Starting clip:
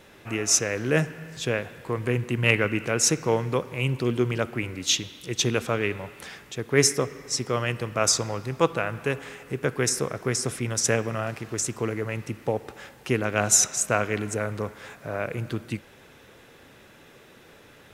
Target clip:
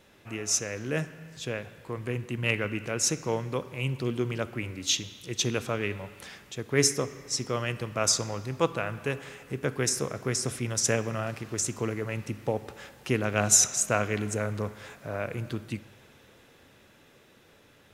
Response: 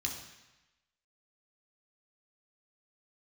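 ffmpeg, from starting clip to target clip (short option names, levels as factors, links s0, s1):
-filter_complex "[0:a]dynaudnorm=f=560:g=11:m=3.76,asplit=2[s0][s1];[1:a]atrim=start_sample=2205[s2];[s1][s2]afir=irnorm=-1:irlink=0,volume=0.158[s3];[s0][s3]amix=inputs=2:normalize=0,volume=0.422"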